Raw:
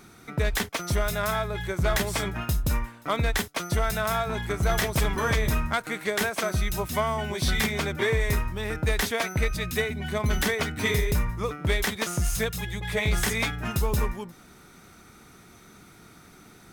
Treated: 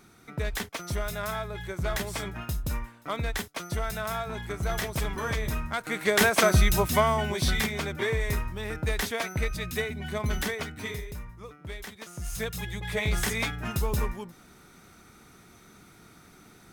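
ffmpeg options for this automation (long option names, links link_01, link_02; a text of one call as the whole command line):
ffmpeg -i in.wav -af "volume=19dB,afade=type=in:start_time=5.73:duration=0.66:silence=0.237137,afade=type=out:start_time=6.39:duration=1.31:silence=0.298538,afade=type=out:start_time=10.27:duration=0.83:silence=0.281838,afade=type=in:start_time=12.13:duration=0.46:silence=0.251189" out.wav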